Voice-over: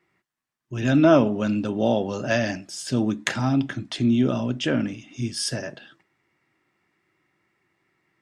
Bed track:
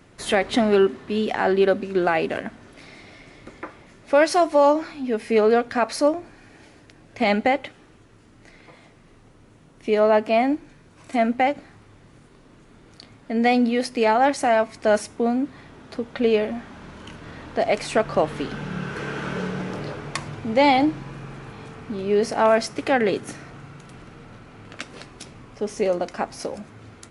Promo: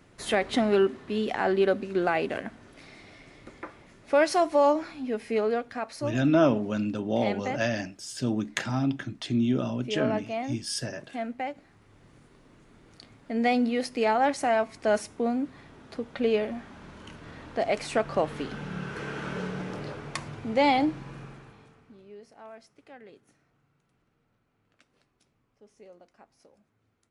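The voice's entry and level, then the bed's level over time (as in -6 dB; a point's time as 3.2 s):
5.30 s, -5.0 dB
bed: 4.99 s -5 dB
5.95 s -13 dB
11.56 s -13 dB
12.04 s -5.5 dB
21.21 s -5.5 dB
22.23 s -29 dB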